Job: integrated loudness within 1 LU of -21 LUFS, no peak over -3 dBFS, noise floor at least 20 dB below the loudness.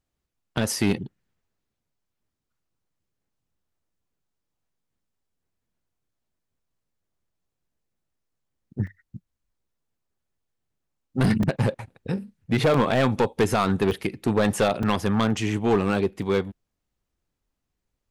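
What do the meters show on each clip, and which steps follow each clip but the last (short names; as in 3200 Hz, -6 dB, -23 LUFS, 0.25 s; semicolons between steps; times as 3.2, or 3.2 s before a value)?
clipped 0.7%; flat tops at -14.5 dBFS; dropouts 6; longest dropout 3.2 ms; loudness -24.0 LUFS; peak -14.5 dBFS; loudness target -21.0 LUFS
-> clip repair -14.5 dBFS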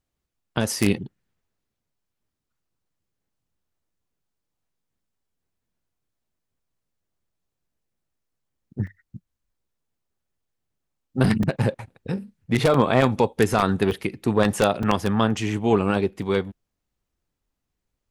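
clipped 0.0%; dropouts 6; longest dropout 3.2 ms
-> interpolate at 8.87/11.43/12.74/13.91/14.83/16.22, 3.2 ms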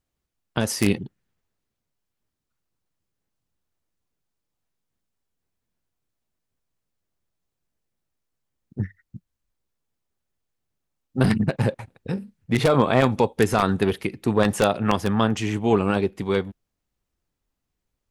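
dropouts 0; loudness -23.0 LUFS; peak -5.5 dBFS; loudness target -21.0 LUFS
-> gain +2 dB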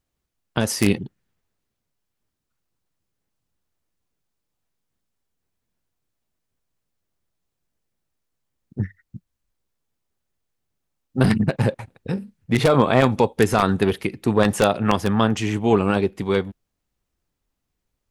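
loudness -21.0 LUFS; peak -3.5 dBFS; noise floor -80 dBFS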